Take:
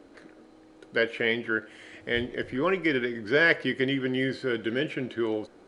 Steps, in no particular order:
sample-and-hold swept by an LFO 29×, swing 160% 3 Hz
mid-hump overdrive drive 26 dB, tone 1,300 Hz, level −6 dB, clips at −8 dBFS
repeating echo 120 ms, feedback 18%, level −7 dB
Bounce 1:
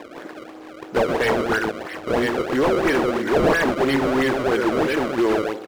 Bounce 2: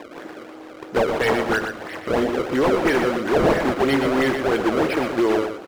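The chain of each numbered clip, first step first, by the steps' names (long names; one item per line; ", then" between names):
repeating echo, then sample-and-hold swept by an LFO, then mid-hump overdrive
sample-and-hold swept by an LFO, then mid-hump overdrive, then repeating echo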